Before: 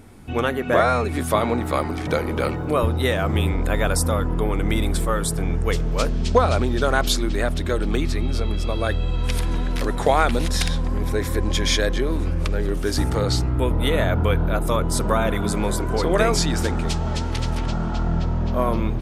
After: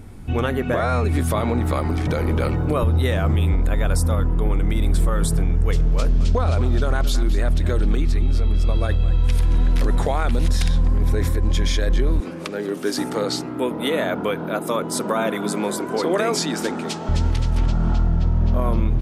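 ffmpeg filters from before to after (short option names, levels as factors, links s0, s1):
-filter_complex "[0:a]asettb=1/sr,asplit=3[s0][s1][s2];[s0]atrim=end=5.784[s3];[s1]atrim=start=5.78:end=9.58,asetpts=PTS-STARTPTS,afade=t=in:d=0.004:c=qsin,afade=t=out:st=3.796:d=0.004:c=qsin,aecho=1:1:219:0.158,atrim=end_sample=167580[s4];[s2]atrim=start=9.576[s5];[s3][s4]acrossfade=d=0.004:c1=hsin:c2=qsin[s6];[s6][s5]acrossfade=d=0.004:c1=qsin:c2=hsin,asettb=1/sr,asplit=3[s7][s8][s9];[s7]atrim=end=12.204[s10];[s8]atrim=start=12.2:end=17.09,asetpts=PTS-STARTPTS,afade=t=in:d=0.004:c=qsin,afade=t=out:st=4.886:d=0.004:c=qsin,highpass=f=220:w=0.5412,highpass=f=220:w=1.3066[s11];[s9]atrim=start=17.086[s12];[s10][s11]acrossfade=d=0.004:c1=hsin:c2=qsin[s13];[s13][s12]acrossfade=d=0.004:c1=qsin:c2=hsin,lowshelf=f=160:g=10.5,alimiter=limit=0.282:level=0:latency=1:release=65"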